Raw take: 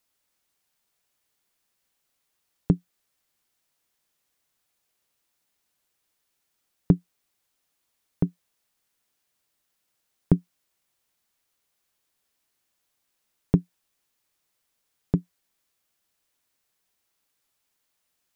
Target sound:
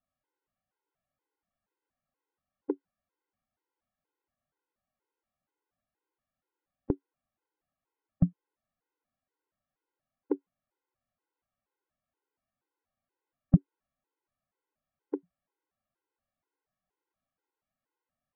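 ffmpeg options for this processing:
-af "lowpass=1200,afftfilt=real='re*gt(sin(2*PI*2.1*pts/sr)*(1-2*mod(floor(b*sr/1024/270),2)),0)':imag='im*gt(sin(2*PI*2.1*pts/sr)*(1-2*mod(floor(b*sr/1024/270),2)),0)':win_size=1024:overlap=0.75"

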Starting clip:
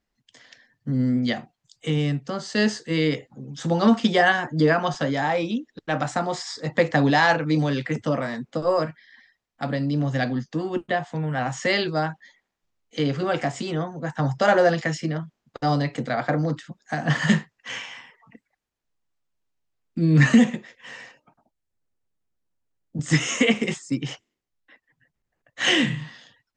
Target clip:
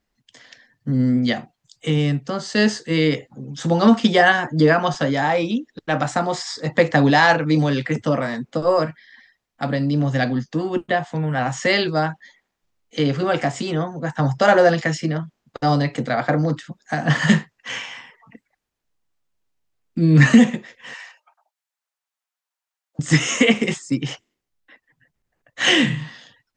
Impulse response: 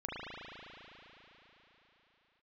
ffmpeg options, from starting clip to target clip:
-filter_complex "[0:a]asettb=1/sr,asplit=3[s0][s1][s2];[s0]atrim=end=20.944[s3];[s1]atrim=start=20.94:end=22.99,asetpts=PTS-STARTPTS,afade=t=in:d=0.004:c=qsin,afade=t=out:st=2.046:d=0.004:c=qsin,highpass=f=780:w=0.5412,highpass=f=780:w=1.3066[s4];[s2]atrim=start=22.986[s5];[s3][s4]acrossfade=d=0.004:c1=hsin:c2=qsin[s6];[s6][s5]acrossfade=d=0.004:c1=qsin:c2=hsin,volume=1.58"

